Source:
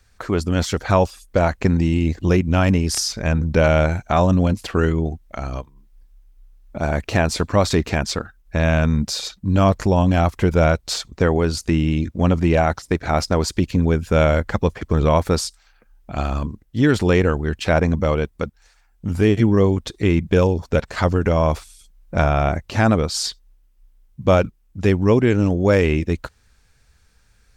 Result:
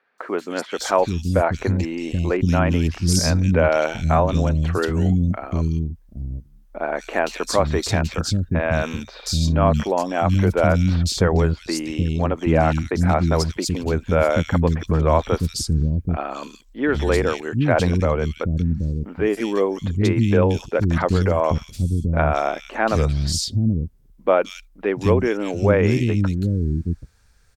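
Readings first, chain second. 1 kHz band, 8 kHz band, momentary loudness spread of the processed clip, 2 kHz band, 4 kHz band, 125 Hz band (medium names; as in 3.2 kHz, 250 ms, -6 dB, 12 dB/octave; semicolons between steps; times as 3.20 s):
-0.5 dB, 0.0 dB, 9 LU, -1.5 dB, -1.0 dB, -0.5 dB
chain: three bands offset in time mids, highs, lows 180/780 ms, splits 280/2700 Hz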